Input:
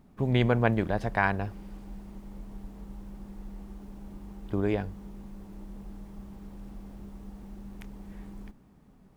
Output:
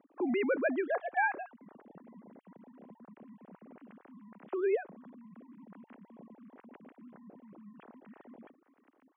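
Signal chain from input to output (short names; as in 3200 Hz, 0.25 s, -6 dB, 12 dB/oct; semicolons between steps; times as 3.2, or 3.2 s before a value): sine-wave speech; BPF 210–2900 Hz; vocal rider 0.5 s; gain -4 dB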